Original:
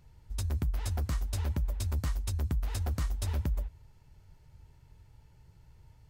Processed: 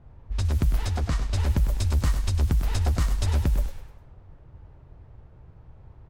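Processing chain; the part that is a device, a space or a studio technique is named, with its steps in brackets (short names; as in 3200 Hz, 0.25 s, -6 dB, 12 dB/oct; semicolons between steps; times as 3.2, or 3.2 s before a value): 0.77–1.3 low shelf 83 Hz -4.5 dB; cassette deck with a dynamic noise filter (white noise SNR 24 dB; low-pass opened by the level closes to 610 Hz, open at -26.5 dBFS); frequency-shifting echo 0.101 s, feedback 38%, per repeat -32 Hz, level -9.5 dB; gain +8 dB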